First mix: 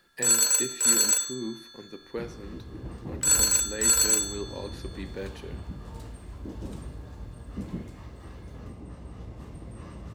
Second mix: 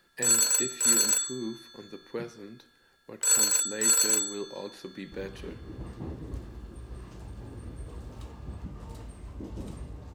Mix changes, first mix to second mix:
second sound: entry +2.95 s
reverb: off

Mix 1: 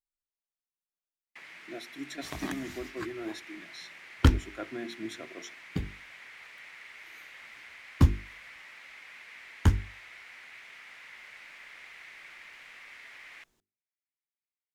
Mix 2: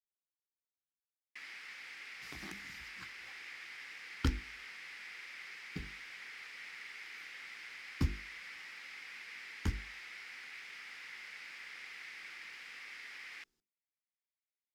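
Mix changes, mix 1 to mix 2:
speech: muted
second sound −10.0 dB
master: add thirty-one-band graphic EQ 100 Hz −11 dB, 630 Hz −11 dB, 1,000 Hz −5 dB, 5,000 Hz +8 dB

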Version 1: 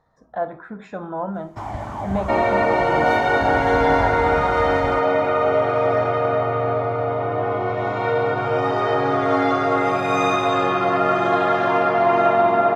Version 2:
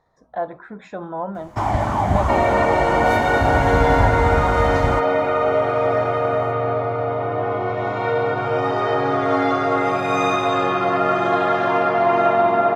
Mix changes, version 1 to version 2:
first sound +9.5 dB
reverb: off

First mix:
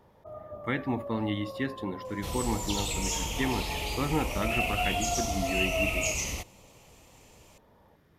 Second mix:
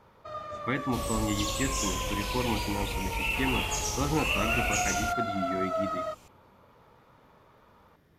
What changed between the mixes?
first sound: remove Chebyshev low-pass filter 830 Hz, order 3
second sound: entry −1.30 s

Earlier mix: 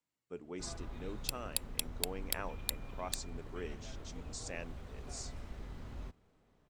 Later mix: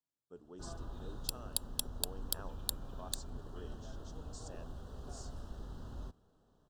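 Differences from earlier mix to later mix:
speech −8.0 dB
master: add Butterworth band-reject 2,200 Hz, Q 1.5

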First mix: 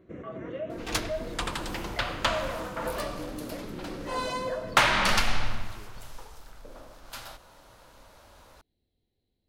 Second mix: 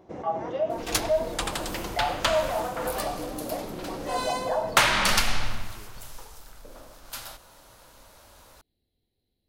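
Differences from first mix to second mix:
first sound: remove phaser with its sweep stopped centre 2,000 Hz, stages 4
master: add high-shelf EQ 5,900 Hz +10 dB

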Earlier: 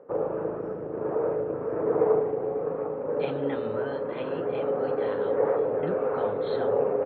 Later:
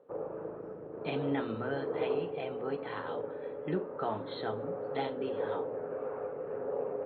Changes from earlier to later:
speech: entry −2.15 s
background −10.5 dB

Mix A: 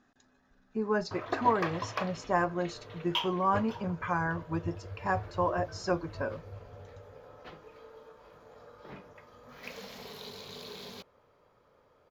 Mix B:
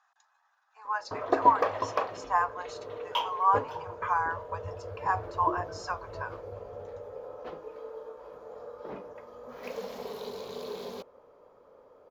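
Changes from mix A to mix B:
speech: add Butterworth high-pass 820 Hz 48 dB per octave
master: add octave-band graphic EQ 125/250/500/1,000/2,000/4,000 Hz −5/+4/+10/+5/−3/−3 dB

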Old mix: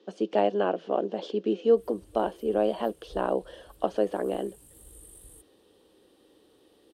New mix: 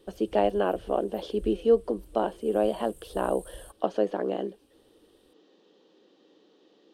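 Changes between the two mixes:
background: entry −1.70 s
master: remove high-pass filter 95 Hz 6 dB per octave

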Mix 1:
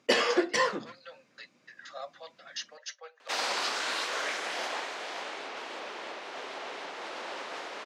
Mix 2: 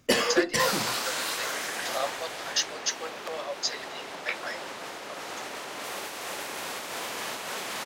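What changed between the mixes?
speech +9.5 dB
second sound: entry −2.70 s
master: remove band-pass filter 310–5,200 Hz

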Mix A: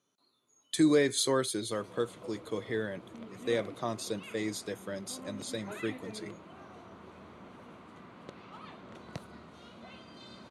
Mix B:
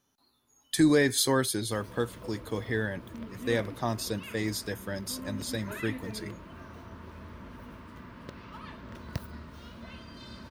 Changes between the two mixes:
background: add Butterworth band-reject 780 Hz, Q 4.1
master: remove loudspeaker in its box 190–9,800 Hz, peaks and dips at 250 Hz −6 dB, 840 Hz −9 dB, 1,700 Hz −8 dB, 2,800 Hz −3 dB, 5,200 Hz −9 dB, 8,900 Hz −3 dB

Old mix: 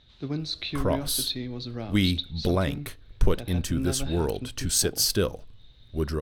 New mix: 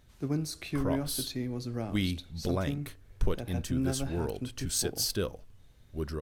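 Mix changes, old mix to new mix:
speech: remove low-pass with resonance 3,800 Hz, resonance Q 6.9
background −7.0 dB

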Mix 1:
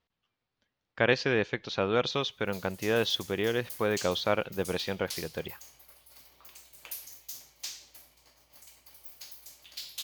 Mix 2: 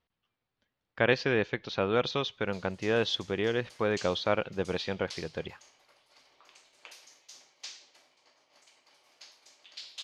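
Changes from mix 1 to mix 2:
background: add band-pass filter 310–7,200 Hz
master: add high-frequency loss of the air 67 metres

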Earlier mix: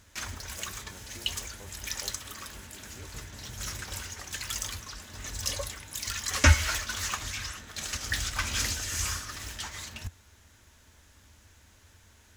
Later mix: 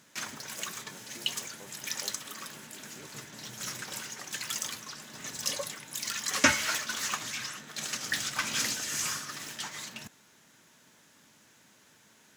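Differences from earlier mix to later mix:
background: add low shelf with overshoot 110 Hz −8.5 dB, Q 3
master: add high-pass filter 160 Hz 12 dB per octave

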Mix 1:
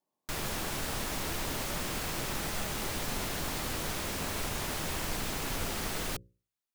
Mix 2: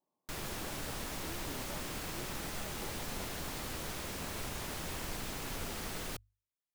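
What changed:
background −6.0 dB
master: remove mains-hum notches 60/120/180/240/300/360/420/480/540 Hz

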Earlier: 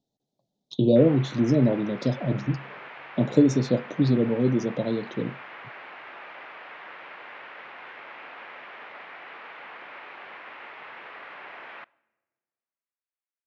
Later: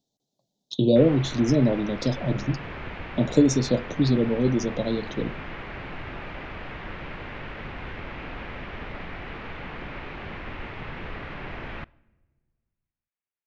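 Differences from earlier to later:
background: remove high-pass filter 740 Hz 12 dB per octave
master: add high-shelf EQ 4,000 Hz +12 dB

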